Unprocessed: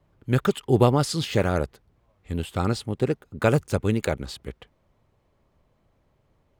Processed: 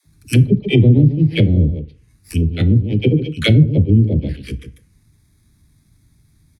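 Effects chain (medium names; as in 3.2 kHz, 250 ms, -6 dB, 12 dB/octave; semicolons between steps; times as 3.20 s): bit-reversed sample order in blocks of 16 samples; amplifier tone stack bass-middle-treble 10-0-1; phase dispersion lows, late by 57 ms, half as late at 350 Hz; touch-sensitive phaser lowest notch 510 Hz, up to 1.4 kHz, full sweep at -38.5 dBFS; delay 146 ms -11 dB; low-pass that closes with the level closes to 340 Hz, closed at -35.5 dBFS; frequency weighting D; FDN reverb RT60 0.41 s, low-frequency decay 0.95×, high-frequency decay 0.7×, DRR 12 dB; loudness maximiser +32.5 dB; trim -1 dB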